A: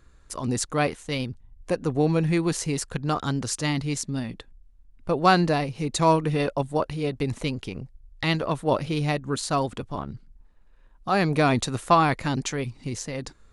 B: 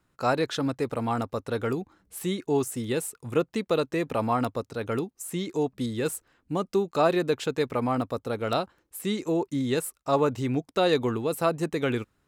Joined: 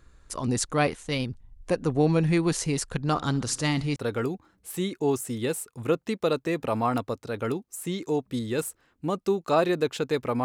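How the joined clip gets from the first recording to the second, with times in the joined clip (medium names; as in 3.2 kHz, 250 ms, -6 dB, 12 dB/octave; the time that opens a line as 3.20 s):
A
3.02–3.96 s: feedback delay 65 ms, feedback 58%, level -21 dB
3.96 s: go over to B from 1.43 s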